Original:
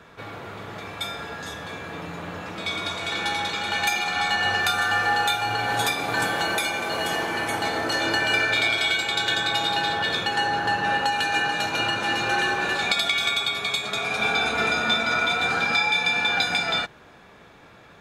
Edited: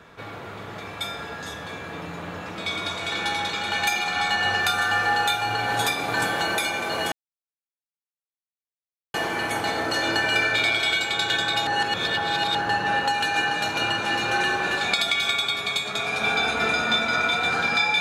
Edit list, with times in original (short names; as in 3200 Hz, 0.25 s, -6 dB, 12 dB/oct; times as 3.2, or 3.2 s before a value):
7.12 insert silence 2.02 s
9.65–10.53 reverse